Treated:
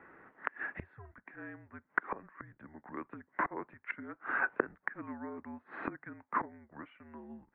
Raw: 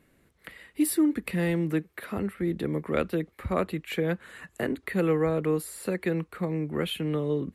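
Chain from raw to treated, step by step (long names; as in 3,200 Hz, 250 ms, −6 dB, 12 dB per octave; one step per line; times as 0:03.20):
gate with flip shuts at −27 dBFS, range −26 dB
single-sideband voice off tune −220 Hz 560–2,100 Hz
level +15 dB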